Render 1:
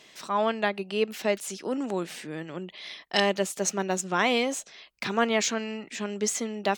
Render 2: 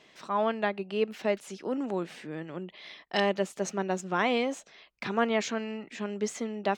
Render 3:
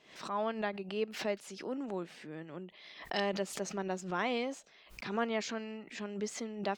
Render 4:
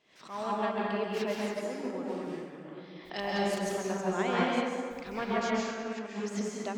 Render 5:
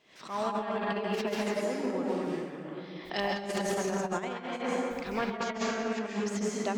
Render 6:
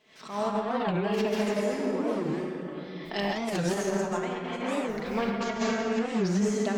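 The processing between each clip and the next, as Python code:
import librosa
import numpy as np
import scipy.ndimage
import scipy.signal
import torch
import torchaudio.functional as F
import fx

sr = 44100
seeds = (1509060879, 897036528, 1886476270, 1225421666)

y1 = fx.lowpass(x, sr, hz=2200.0, slope=6)
y1 = y1 * librosa.db_to_amplitude(-1.5)
y2 = fx.dynamic_eq(y1, sr, hz=4800.0, q=3.9, threshold_db=-58.0, ratio=4.0, max_db=6)
y2 = fx.pre_swell(y2, sr, db_per_s=100.0)
y2 = y2 * librosa.db_to_amplitude(-7.0)
y3 = fx.rev_plate(y2, sr, seeds[0], rt60_s=2.6, hf_ratio=0.45, predelay_ms=120, drr_db=-5.5)
y3 = fx.upward_expand(y3, sr, threshold_db=-39.0, expansion=1.5)
y4 = fx.over_compress(y3, sr, threshold_db=-33.0, ratio=-0.5)
y4 = y4 * librosa.db_to_amplitude(2.5)
y5 = fx.room_shoebox(y4, sr, seeds[1], volume_m3=2200.0, walls='mixed', distance_m=1.5)
y5 = fx.record_warp(y5, sr, rpm=45.0, depth_cents=250.0)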